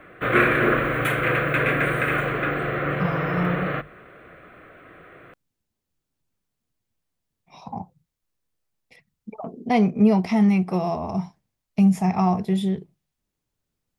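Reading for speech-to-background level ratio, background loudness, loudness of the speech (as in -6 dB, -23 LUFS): 0.0 dB, -22.5 LUFS, -22.5 LUFS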